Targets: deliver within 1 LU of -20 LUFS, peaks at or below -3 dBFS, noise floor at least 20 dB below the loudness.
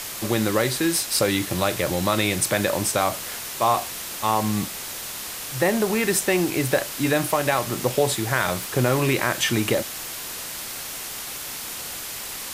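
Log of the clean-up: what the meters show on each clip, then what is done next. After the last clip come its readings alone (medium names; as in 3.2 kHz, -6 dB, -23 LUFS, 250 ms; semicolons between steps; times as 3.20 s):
noise floor -34 dBFS; noise floor target -44 dBFS; loudness -23.5 LUFS; peak level -6.0 dBFS; loudness target -20.0 LUFS
-> noise reduction 10 dB, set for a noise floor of -34 dBFS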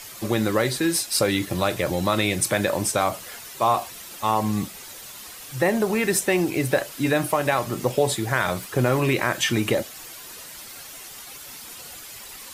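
noise floor -41 dBFS; noise floor target -43 dBFS
-> noise reduction 6 dB, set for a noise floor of -41 dBFS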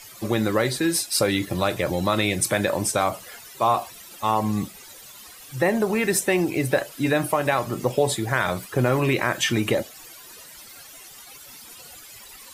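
noise floor -45 dBFS; loudness -23.0 LUFS; peak level -7.0 dBFS; loudness target -20.0 LUFS
-> trim +3 dB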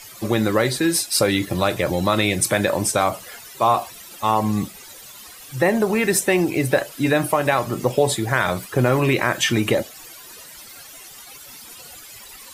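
loudness -20.0 LUFS; peak level -4.0 dBFS; noise floor -42 dBFS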